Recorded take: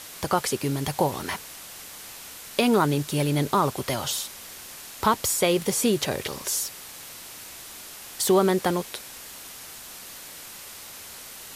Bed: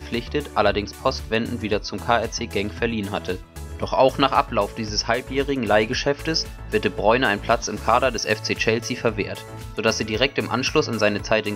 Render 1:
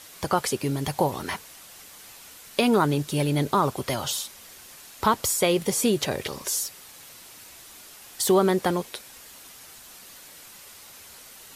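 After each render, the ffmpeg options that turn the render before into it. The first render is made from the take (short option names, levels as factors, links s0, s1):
-af "afftdn=nr=6:nf=-42"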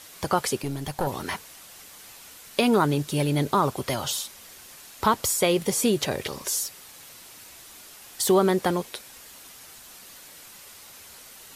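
-filter_complex "[0:a]asettb=1/sr,asplit=3[s0][s1][s2];[s0]atrim=end=0.624[s3];[s1]atrim=start=0.62:end=1.07,asetpts=PTS-STARTPTS,afade=t=in:d=0.004:c=qsin,afade=t=out:st=0.446:d=0.004:c=qsin,aeval=exprs='(tanh(6.31*val(0)+0.7)-tanh(0.7))/6.31':c=same[s4];[s2]atrim=start=1.066[s5];[s3][s4]acrossfade=d=0.004:c1=hsin:c2=qsin[s6];[s6][s5]acrossfade=d=0.004:c1=qsin:c2=hsin"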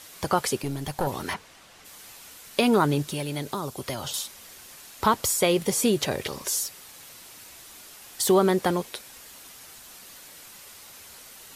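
-filter_complex "[0:a]asplit=3[s0][s1][s2];[s0]afade=t=out:st=1.33:d=0.02[s3];[s1]aemphasis=mode=reproduction:type=50fm,afade=t=in:st=1.33:d=0.02,afade=t=out:st=1.84:d=0.02[s4];[s2]afade=t=in:st=1.84:d=0.02[s5];[s3][s4][s5]amix=inputs=3:normalize=0,asettb=1/sr,asplit=3[s6][s7][s8];[s6]atrim=end=3.104[s9];[s7]atrim=start=3.1:end=4.14,asetpts=PTS-STARTPTS,afade=t=in:d=0.004:c=qsin,afade=t=out:st=1.036:d=0.004:c=qsin,acrossover=split=570|3700[s10][s11][s12];[s10]acompressor=threshold=0.0251:ratio=4[s13];[s11]acompressor=threshold=0.0178:ratio=4[s14];[s12]acompressor=threshold=0.0126:ratio=4[s15];[s13][s14][s15]amix=inputs=3:normalize=0[s16];[s8]atrim=start=4.136[s17];[s9][s16]acrossfade=d=0.004:c1=hsin:c2=qsin[s18];[s18][s17]acrossfade=d=0.004:c1=qsin:c2=hsin"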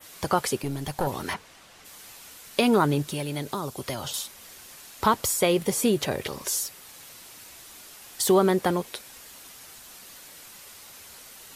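-af "adynamicequalizer=threshold=0.00891:dfrequency=5500:dqfactor=0.72:tfrequency=5500:tqfactor=0.72:attack=5:release=100:ratio=0.375:range=2:mode=cutabove:tftype=bell"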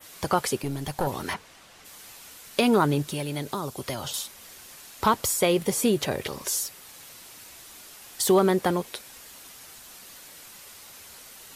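-af "asoftclip=type=hard:threshold=0.316"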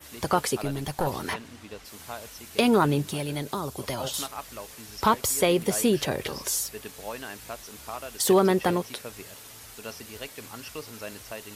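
-filter_complex "[1:a]volume=0.106[s0];[0:a][s0]amix=inputs=2:normalize=0"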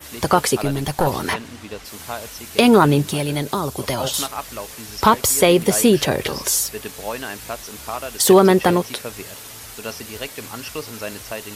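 -af "volume=2.66,alimiter=limit=0.794:level=0:latency=1"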